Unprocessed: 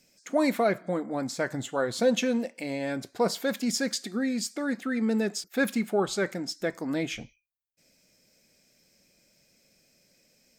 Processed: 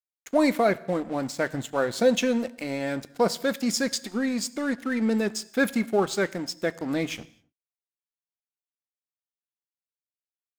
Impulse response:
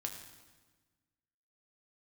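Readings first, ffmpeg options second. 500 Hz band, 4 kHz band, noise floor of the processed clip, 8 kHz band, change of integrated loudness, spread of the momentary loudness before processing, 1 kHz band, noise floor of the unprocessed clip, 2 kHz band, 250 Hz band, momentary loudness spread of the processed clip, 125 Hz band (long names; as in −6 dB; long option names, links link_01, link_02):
+2.5 dB, +2.0 dB, below −85 dBFS, +1.5 dB, +2.5 dB, 7 LU, +3.0 dB, −67 dBFS, +2.5 dB, +2.0 dB, 8 LU, +2.0 dB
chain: -filter_complex "[0:a]aeval=exprs='sgn(val(0))*max(abs(val(0))-0.00596,0)':channel_layout=same,asplit=2[link_01][link_02];[1:a]atrim=start_sample=2205,afade=type=out:start_time=0.32:duration=0.01,atrim=end_sample=14553[link_03];[link_02][link_03]afir=irnorm=-1:irlink=0,volume=-10dB[link_04];[link_01][link_04]amix=inputs=2:normalize=0,volume=1.5dB"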